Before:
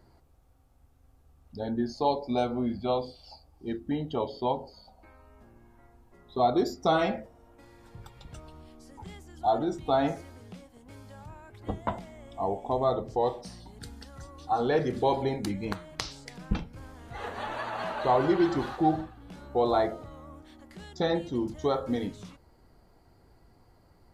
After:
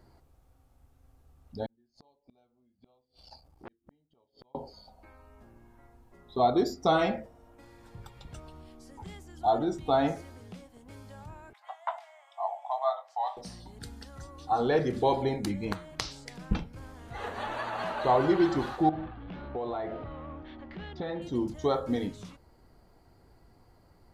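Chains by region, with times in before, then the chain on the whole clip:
1.66–4.55 flipped gate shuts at -29 dBFS, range -41 dB + core saturation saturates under 1300 Hz
11.53–13.37 steep high-pass 660 Hz 72 dB/oct + high shelf 4000 Hz -9.5 dB + doubler 21 ms -11 dB
18.89–21.22 G.711 law mismatch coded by mu + LPF 3400 Hz 24 dB/oct + compressor 4:1, threshold -32 dBFS
whole clip: dry

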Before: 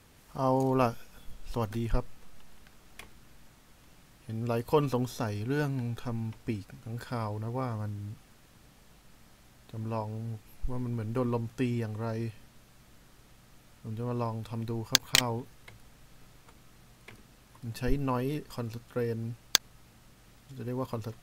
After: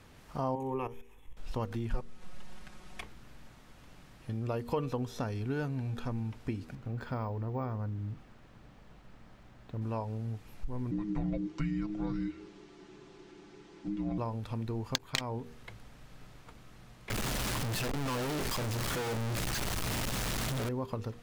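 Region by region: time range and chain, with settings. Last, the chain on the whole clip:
0.55–1.37 level quantiser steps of 14 dB + fixed phaser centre 950 Hz, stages 8
1.9–3.01 CVSD 64 kbps + comb 5.5 ms, depth 85%
6.75–9.82 high shelf 3200 Hz -9 dB + careless resampling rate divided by 2×, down filtered, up hold
10.91–14.18 LPF 7700 Hz 24 dB/oct + frequency shift -420 Hz + comb 5.9 ms, depth 56%
17.1–20.69 infinite clipping + high shelf 4900 Hz +7 dB
whole clip: LPF 3700 Hz 6 dB/oct; de-hum 79.07 Hz, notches 6; compressor 2.5:1, threshold -37 dBFS; gain +3.5 dB

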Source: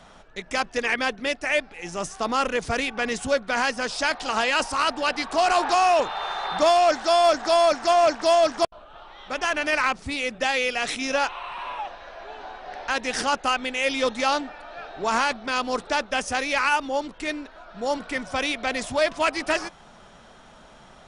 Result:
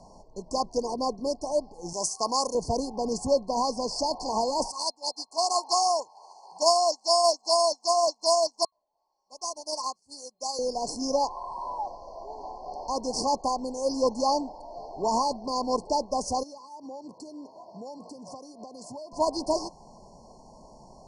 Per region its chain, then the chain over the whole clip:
1.93–2.55 expander -38 dBFS + tilt +3.5 dB/oct
4.71–10.59 tilt +4 dB/oct + upward expander 2.5:1, over -35 dBFS
16.43–19.13 HPF 120 Hz 24 dB/oct + compressor 8:1, threshold -37 dBFS
whole clip: LPF 8300 Hz 12 dB/oct; FFT band-reject 1100–4200 Hz

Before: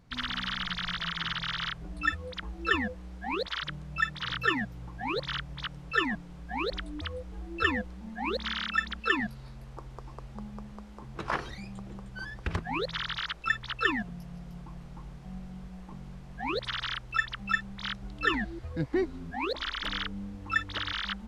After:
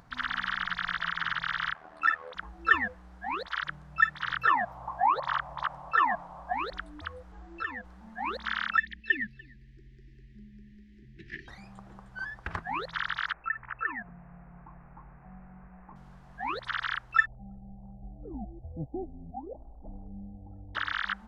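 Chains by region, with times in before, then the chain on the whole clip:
1.74–2.35 tone controls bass -13 dB, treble -3 dB + overdrive pedal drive 18 dB, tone 1900 Hz, clips at -14.5 dBFS + AM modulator 78 Hz, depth 60%
4.47–6.53 band shelf 810 Hz +16 dB 1.3 oct + compressor 1.5:1, threshold -31 dBFS
7.32–7.85 compressor 12:1, threshold -32 dBFS + brick-wall FIR low-pass 8000 Hz
8.78–11.48 Chebyshev band-stop 390–1800 Hz, order 5 + air absorption 140 m + echo 0.293 s -19.5 dB
13.33–15.96 steep low-pass 2600 Hz 96 dB/oct + compressor 2.5:1, threshold -35 dBFS
17.26–20.75 rippled Chebyshev low-pass 810 Hz, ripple 3 dB + low shelf 140 Hz +9.5 dB
whole clip: band shelf 1100 Hz +9 dB; upward compressor, threshold -41 dBFS; dynamic EQ 1900 Hz, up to +6 dB, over -34 dBFS, Q 1.1; gain -8 dB

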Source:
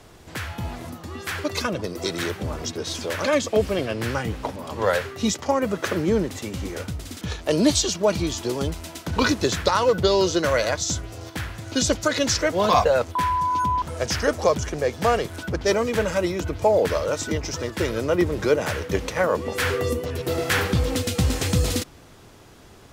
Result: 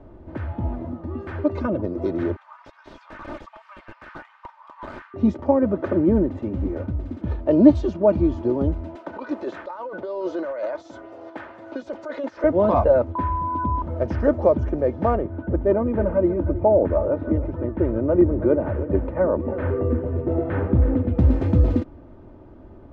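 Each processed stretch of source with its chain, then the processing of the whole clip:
2.36–5.14 steep high-pass 970 Hz 48 dB/oct + wrapped overs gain 24 dB
8.95–12.44 HPF 600 Hz + negative-ratio compressor -29 dBFS
15.15–21.19 air absorption 440 m + echo 0.319 s -13.5 dB
whole clip: Bessel low-pass 550 Hz, order 2; comb 3.3 ms, depth 51%; gain +5 dB

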